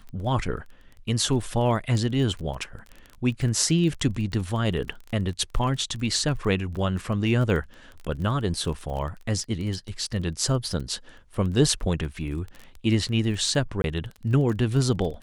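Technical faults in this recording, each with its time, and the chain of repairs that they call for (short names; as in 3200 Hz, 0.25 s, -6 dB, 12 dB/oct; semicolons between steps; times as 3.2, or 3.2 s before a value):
crackle 21/s -32 dBFS
13.82–13.84 gap 21 ms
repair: de-click; interpolate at 13.82, 21 ms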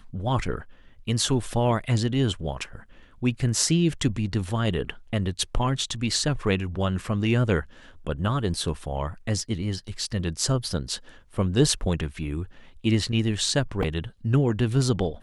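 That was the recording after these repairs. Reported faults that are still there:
none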